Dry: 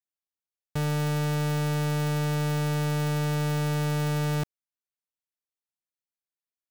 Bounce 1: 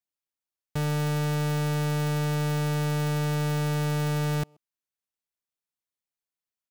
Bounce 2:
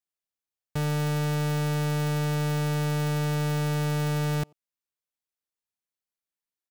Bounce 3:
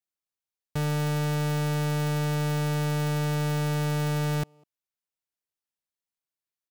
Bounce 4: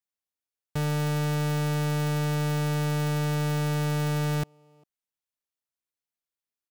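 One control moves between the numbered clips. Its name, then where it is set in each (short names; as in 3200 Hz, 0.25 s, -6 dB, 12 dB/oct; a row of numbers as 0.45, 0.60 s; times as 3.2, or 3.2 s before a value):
speakerphone echo, time: 130, 90, 200, 400 ms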